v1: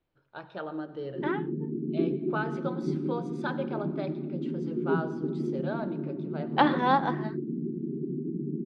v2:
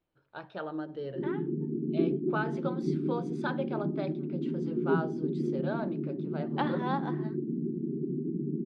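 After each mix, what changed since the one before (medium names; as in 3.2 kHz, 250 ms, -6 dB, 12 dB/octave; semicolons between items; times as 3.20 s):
second voice -9.5 dB; reverb: off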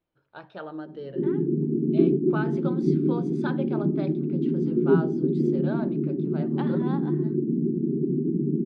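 second voice -5.5 dB; background +8.0 dB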